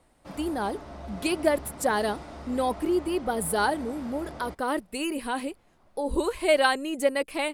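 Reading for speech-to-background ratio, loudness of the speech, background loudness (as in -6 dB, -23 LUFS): 14.5 dB, -28.0 LUFS, -42.5 LUFS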